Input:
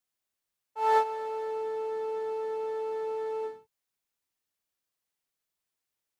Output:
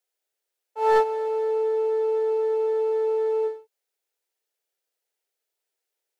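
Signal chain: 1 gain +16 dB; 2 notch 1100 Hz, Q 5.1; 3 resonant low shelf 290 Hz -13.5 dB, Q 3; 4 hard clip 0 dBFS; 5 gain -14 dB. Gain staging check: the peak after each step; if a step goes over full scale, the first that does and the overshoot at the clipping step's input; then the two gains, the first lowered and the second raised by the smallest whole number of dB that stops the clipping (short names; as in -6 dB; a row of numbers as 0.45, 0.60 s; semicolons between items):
+3.0, +2.5, +5.5, 0.0, -14.0 dBFS; step 1, 5.5 dB; step 1 +10 dB, step 5 -8 dB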